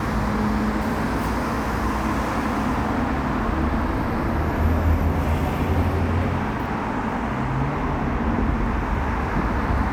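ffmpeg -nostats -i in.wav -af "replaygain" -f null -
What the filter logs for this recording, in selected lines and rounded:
track_gain = +8.1 dB
track_peak = 0.277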